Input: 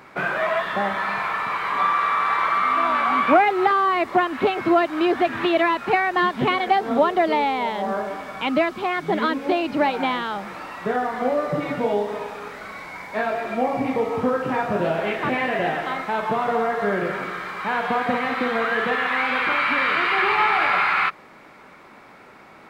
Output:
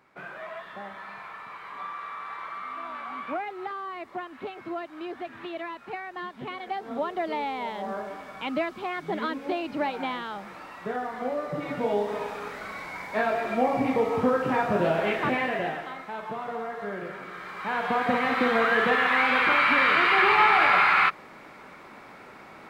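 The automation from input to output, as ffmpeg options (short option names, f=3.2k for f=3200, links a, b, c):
-af "volume=10dB,afade=t=in:st=6.44:d=1.26:silence=0.375837,afade=t=in:st=11.53:d=0.73:silence=0.473151,afade=t=out:st=15.17:d=0.75:silence=0.316228,afade=t=in:st=17.24:d=1.22:silence=0.266073"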